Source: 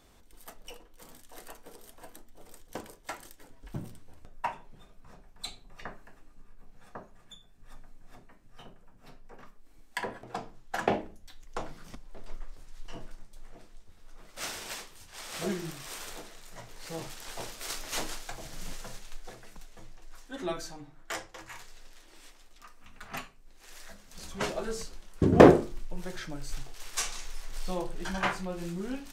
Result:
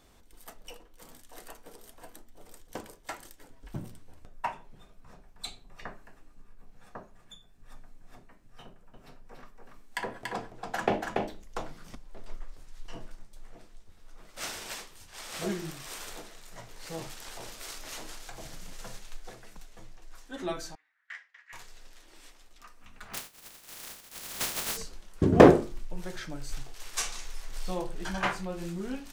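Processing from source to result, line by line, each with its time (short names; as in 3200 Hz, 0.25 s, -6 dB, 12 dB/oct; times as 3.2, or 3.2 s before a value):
8.65–11.68 echo 0.285 s -3.5 dB
17.14–18.79 compressor, threshold -37 dBFS
20.75–21.53 ladder band-pass 2000 Hz, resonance 70%
23.13–24.76 spectral contrast lowered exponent 0.11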